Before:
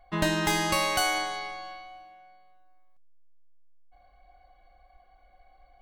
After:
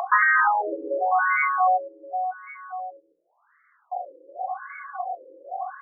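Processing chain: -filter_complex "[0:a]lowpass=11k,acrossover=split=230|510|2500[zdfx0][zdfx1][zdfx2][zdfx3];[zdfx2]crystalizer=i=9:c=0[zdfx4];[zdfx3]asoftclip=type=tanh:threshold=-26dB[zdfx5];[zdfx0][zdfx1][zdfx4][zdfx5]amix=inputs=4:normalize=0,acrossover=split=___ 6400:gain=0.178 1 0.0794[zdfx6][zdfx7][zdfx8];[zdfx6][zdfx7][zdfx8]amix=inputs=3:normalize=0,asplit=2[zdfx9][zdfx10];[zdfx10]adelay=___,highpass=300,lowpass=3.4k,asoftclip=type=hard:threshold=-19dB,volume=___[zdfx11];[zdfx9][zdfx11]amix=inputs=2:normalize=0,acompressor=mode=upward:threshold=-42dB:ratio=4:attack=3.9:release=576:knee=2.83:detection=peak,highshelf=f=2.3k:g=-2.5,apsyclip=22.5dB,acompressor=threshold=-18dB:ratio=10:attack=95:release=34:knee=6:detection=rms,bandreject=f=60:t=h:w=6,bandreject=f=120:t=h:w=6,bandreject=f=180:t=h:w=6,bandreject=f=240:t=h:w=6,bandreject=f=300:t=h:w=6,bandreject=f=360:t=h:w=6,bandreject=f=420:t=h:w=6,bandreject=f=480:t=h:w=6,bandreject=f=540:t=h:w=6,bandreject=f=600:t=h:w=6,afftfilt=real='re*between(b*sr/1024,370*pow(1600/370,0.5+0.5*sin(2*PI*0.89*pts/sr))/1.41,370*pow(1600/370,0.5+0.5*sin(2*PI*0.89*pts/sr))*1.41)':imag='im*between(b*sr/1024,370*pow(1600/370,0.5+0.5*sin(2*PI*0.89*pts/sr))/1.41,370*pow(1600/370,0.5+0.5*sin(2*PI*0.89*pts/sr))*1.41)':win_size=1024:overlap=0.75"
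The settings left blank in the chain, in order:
280, 150, -6dB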